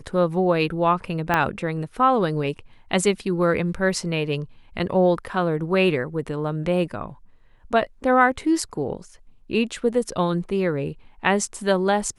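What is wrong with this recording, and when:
1.34 s: pop -7 dBFS

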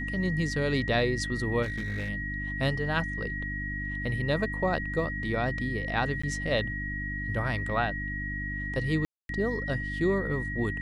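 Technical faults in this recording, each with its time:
hum 50 Hz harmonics 6 -36 dBFS
whine 1.9 kHz -34 dBFS
1.62–2.10 s: clipped -28.5 dBFS
6.22–6.24 s: dropout 15 ms
9.05–9.29 s: dropout 242 ms

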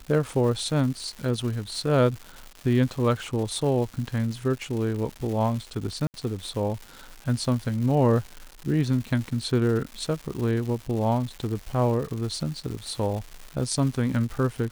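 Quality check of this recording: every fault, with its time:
crackle 340 per s -33 dBFS
6.07–6.14 s: dropout 69 ms

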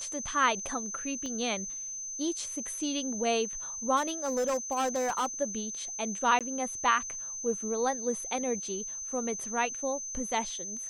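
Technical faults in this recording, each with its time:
whine 6.2 kHz -36 dBFS
1.26 s: pop -26 dBFS
3.96–5.26 s: clipped -25 dBFS
6.39–6.41 s: dropout 17 ms

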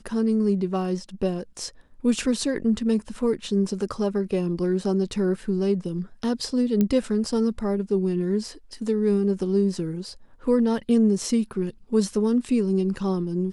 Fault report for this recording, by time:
6.81 s: pop -11 dBFS

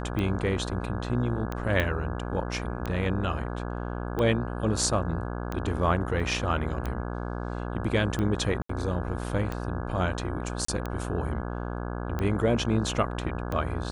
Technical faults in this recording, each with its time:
buzz 60 Hz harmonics 28 -33 dBFS
tick 45 rpm -18 dBFS
1.80 s: pop -14 dBFS
6.20 s: dropout 2.6 ms
8.62–8.69 s: dropout 74 ms
10.65–10.68 s: dropout 34 ms

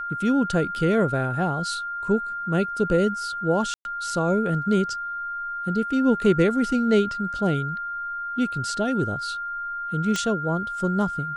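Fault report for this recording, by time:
whine 1.4 kHz -28 dBFS
3.74–3.85 s: dropout 111 ms
10.16 s: pop -12 dBFS

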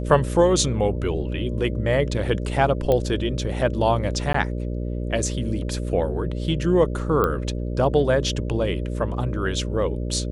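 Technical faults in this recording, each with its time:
buzz 60 Hz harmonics 10 -27 dBFS
2.92 s: pop -10 dBFS
4.33–4.34 s: dropout 14 ms
7.24 s: pop -10 dBFS

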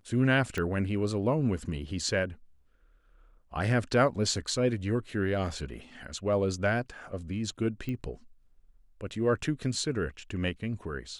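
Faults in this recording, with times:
0.58 s: pop -19 dBFS
7.89 s: pop -24 dBFS

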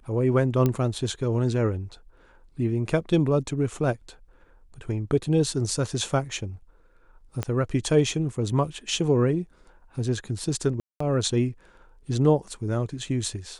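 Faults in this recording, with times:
0.66 s: pop -11 dBFS
7.43 s: pop -14 dBFS
10.80–11.00 s: dropout 204 ms

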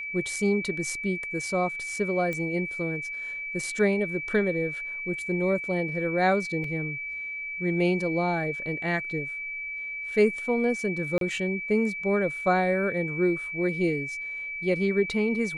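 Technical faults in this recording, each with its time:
whine 2.3 kHz -32 dBFS
2.33 s: pop -19 dBFS
6.64 s: dropout 3.1 ms
11.18–11.21 s: dropout 32 ms

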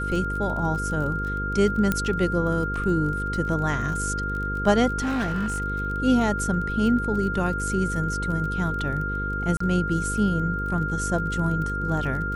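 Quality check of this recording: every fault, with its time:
buzz 50 Hz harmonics 10 -30 dBFS
crackle 26 per s -32 dBFS
whine 1.4 kHz -28 dBFS
1.92 s: pop -9 dBFS
4.99–5.62 s: clipped -22 dBFS
9.57–9.60 s: dropout 34 ms

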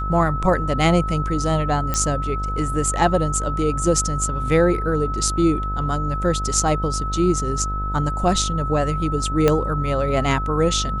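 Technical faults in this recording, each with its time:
buzz 50 Hz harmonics 26 -26 dBFS
whine 1.3 kHz -26 dBFS
1.94 s: pop -7 dBFS
9.48 s: pop -4 dBFS

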